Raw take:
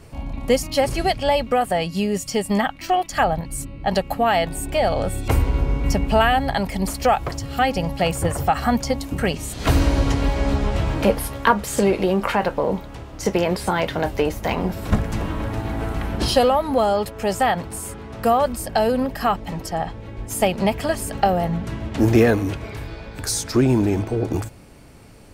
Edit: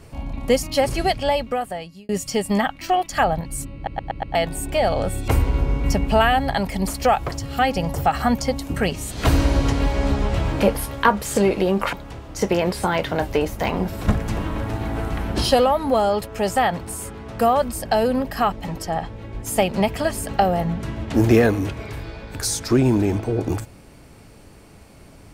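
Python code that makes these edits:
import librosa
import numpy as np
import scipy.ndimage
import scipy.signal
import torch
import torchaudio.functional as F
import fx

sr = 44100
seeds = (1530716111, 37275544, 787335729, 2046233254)

y = fx.edit(x, sr, fx.fade_out_span(start_s=1.17, length_s=0.92),
    fx.stutter_over(start_s=3.75, slice_s=0.12, count=5),
    fx.cut(start_s=7.94, length_s=0.42),
    fx.cut(start_s=12.35, length_s=0.42), tone=tone)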